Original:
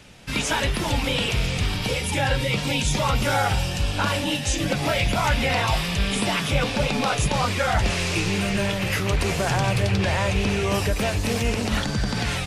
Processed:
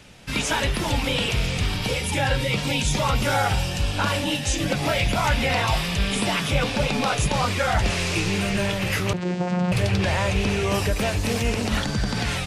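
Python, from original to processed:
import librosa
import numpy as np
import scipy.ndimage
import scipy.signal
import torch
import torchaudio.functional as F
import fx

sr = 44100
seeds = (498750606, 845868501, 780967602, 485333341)

y = fx.vocoder(x, sr, bands=8, carrier='saw', carrier_hz=179.0, at=(9.13, 9.72))
y = y + 10.0 ** (-23.0 / 20.0) * np.pad(y, (int(73 * sr / 1000.0), 0))[:len(y)]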